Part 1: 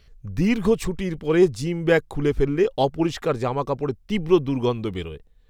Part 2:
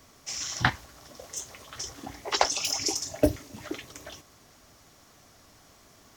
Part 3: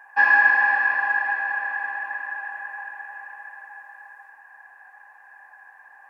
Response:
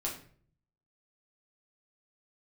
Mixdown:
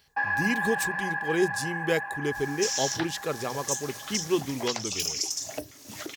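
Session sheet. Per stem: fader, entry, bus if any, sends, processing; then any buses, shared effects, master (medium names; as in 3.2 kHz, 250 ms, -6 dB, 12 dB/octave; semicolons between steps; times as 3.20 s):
-8.5 dB, 0.00 s, no send, treble shelf 7.9 kHz +6 dB; hum notches 60/120/180 Hz
+1.0 dB, 2.35 s, no send, compression 6:1, threshold -36 dBFS, peak gain reduction 19 dB
-3.5 dB, 0.00 s, no send, gate with hold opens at -37 dBFS; compression 2:1, threshold -27 dBFS, peak gain reduction 8.5 dB; tilt shelf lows +7 dB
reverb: none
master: high-pass 100 Hz 12 dB/octave; treble shelf 3.1 kHz +11 dB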